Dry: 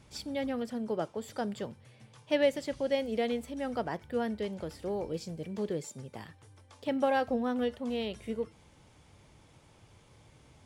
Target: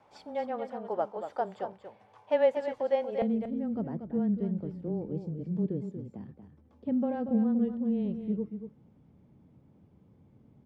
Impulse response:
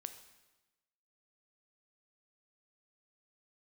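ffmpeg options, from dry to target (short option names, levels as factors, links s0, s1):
-af "afreqshift=-15,asetnsamples=n=441:p=0,asendcmd='3.22 bandpass f 200',bandpass=f=800:t=q:w=2.1:csg=0,aecho=1:1:235:0.355,volume=2.51"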